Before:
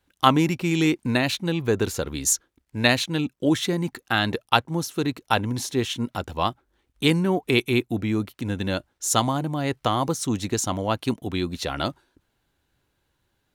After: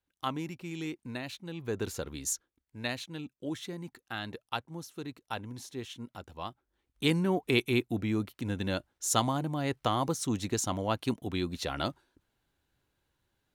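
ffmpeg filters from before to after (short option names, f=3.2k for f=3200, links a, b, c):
-af "volume=0.5dB,afade=t=in:st=1.49:d=0.44:silence=0.421697,afade=t=out:st=1.93:d=0.85:silence=0.473151,afade=t=in:st=6.48:d=0.75:silence=0.334965"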